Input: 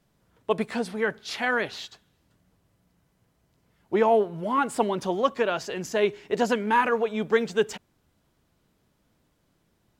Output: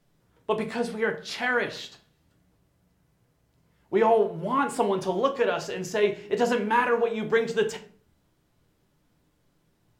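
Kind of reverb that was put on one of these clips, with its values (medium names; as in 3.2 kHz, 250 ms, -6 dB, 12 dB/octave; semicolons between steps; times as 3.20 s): simulated room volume 38 m³, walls mixed, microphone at 0.32 m; trim -1.5 dB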